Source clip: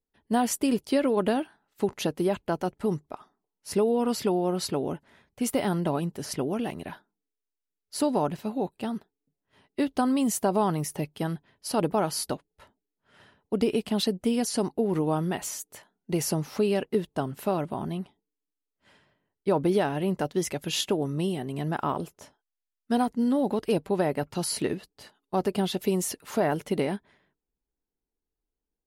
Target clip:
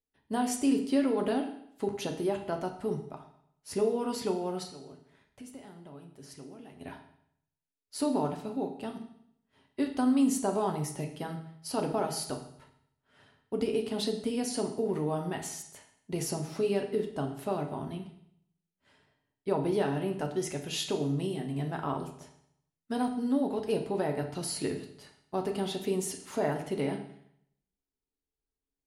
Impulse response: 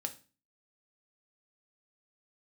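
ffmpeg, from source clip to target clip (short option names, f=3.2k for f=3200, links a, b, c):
-filter_complex "[0:a]asplit=3[a][b][c];[a]afade=t=out:st=4.62:d=0.02[d];[b]acompressor=threshold=-44dB:ratio=4,afade=t=in:st=4.62:d=0.02,afade=t=out:st=6.8:d=0.02[e];[c]afade=t=in:st=6.8:d=0.02[f];[d][e][f]amix=inputs=3:normalize=0[g];[1:a]atrim=start_sample=2205,asetrate=22050,aresample=44100[h];[g][h]afir=irnorm=-1:irlink=0,volume=-8.5dB"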